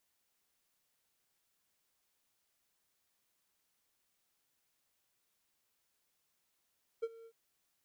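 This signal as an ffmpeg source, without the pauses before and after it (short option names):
-f lavfi -i "aevalsrc='0.0355*(1-4*abs(mod(456*t+0.25,1)-0.5))':d=0.303:s=44100,afade=t=in:d=0.016,afade=t=out:st=0.016:d=0.041:silence=0.0944,afade=t=out:st=0.24:d=0.063"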